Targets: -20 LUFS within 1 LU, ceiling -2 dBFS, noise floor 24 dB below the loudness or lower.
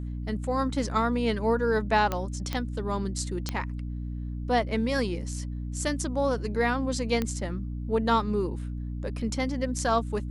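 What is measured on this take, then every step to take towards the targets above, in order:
clicks found 4; hum 60 Hz; highest harmonic 300 Hz; hum level -31 dBFS; loudness -28.5 LUFS; peak level -11.0 dBFS; loudness target -20.0 LUFS
-> de-click; hum notches 60/120/180/240/300 Hz; trim +8.5 dB

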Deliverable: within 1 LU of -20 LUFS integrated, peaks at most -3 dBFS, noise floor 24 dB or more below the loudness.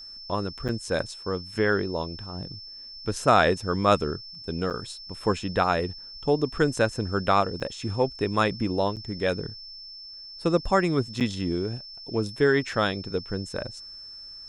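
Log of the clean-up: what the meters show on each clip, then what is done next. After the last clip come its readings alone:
dropouts 5; longest dropout 7.6 ms; steady tone 5.3 kHz; tone level -40 dBFS; loudness -26.5 LUFS; peak level -6.0 dBFS; loudness target -20.0 LUFS
-> interpolate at 0.68/4.70/7.60/8.96/11.20 s, 7.6 ms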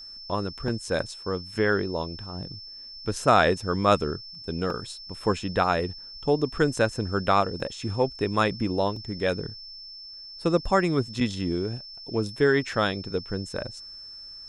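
dropouts 0; steady tone 5.3 kHz; tone level -40 dBFS
-> band-stop 5.3 kHz, Q 30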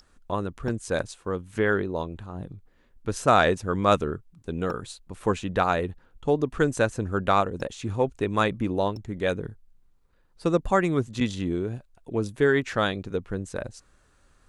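steady tone not found; loudness -26.5 LUFS; peak level -6.0 dBFS; loudness target -20.0 LUFS
-> trim +6.5 dB; peak limiter -3 dBFS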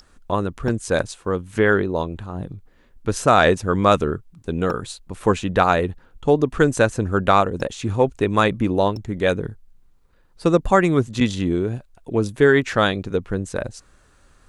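loudness -20.5 LUFS; peak level -3.0 dBFS; noise floor -55 dBFS

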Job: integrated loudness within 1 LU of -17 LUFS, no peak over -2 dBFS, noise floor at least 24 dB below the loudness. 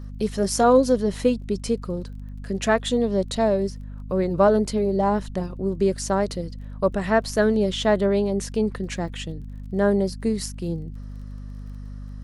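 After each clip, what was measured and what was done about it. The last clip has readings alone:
tick rate 23 per s; hum 50 Hz; highest harmonic 250 Hz; hum level -33 dBFS; loudness -23.0 LUFS; peak level -6.5 dBFS; loudness target -17.0 LUFS
-> de-click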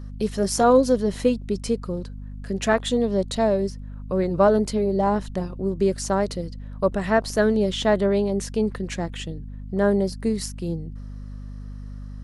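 tick rate 0 per s; hum 50 Hz; highest harmonic 250 Hz; hum level -33 dBFS
-> hum notches 50/100/150/200/250 Hz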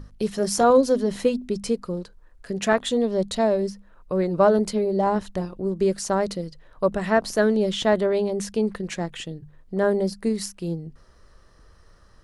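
hum not found; loudness -23.5 LUFS; peak level -7.0 dBFS; loudness target -17.0 LUFS
-> trim +6.5 dB; peak limiter -2 dBFS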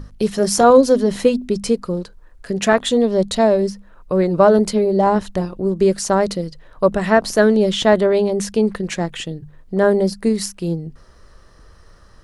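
loudness -17.5 LUFS; peak level -2.0 dBFS; noise floor -47 dBFS

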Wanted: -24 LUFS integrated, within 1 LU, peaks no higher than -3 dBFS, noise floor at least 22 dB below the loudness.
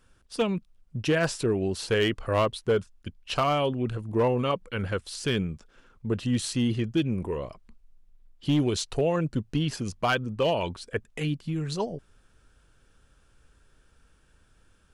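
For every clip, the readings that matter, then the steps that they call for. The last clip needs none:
clipped samples 0.3%; clipping level -17.0 dBFS; loudness -28.0 LUFS; peak level -17.0 dBFS; loudness target -24.0 LUFS
-> clip repair -17 dBFS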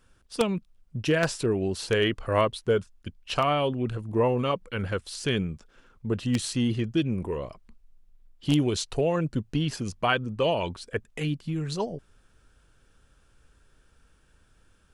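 clipped samples 0.0%; loudness -27.5 LUFS; peak level -8.0 dBFS; loudness target -24.0 LUFS
-> trim +3.5 dB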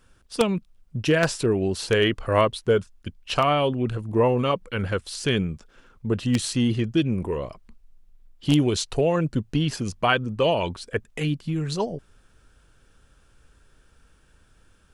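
loudness -24.0 LUFS; peak level -4.5 dBFS; noise floor -59 dBFS

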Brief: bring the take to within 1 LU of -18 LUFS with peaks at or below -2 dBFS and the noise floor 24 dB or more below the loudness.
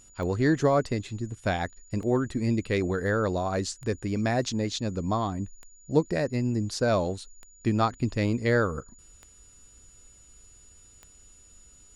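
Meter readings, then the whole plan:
clicks found 7; steady tone 6.9 kHz; tone level -54 dBFS; loudness -27.5 LUFS; peak level -10.0 dBFS; loudness target -18.0 LUFS
-> de-click; band-stop 6.9 kHz, Q 30; trim +9.5 dB; peak limiter -2 dBFS

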